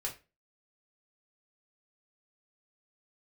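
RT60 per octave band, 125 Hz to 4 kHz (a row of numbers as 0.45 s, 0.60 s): 0.40 s, 0.35 s, 0.30 s, 0.25 s, 0.30 s, 0.25 s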